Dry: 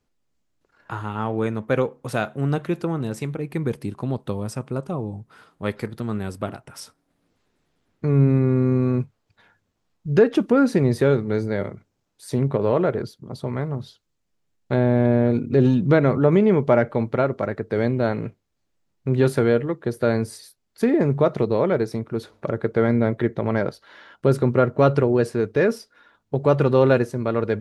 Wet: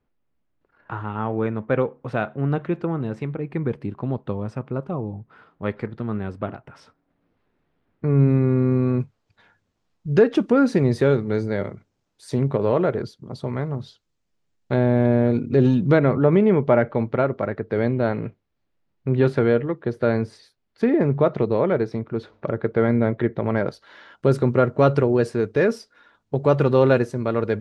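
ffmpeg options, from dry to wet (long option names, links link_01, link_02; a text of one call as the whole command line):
ffmpeg -i in.wav -af "asetnsamples=nb_out_samples=441:pad=0,asendcmd='8.19 lowpass f 4500;9 lowpass f 7500;15.99 lowpass f 3500;23.67 lowpass f 8600',lowpass=2400" out.wav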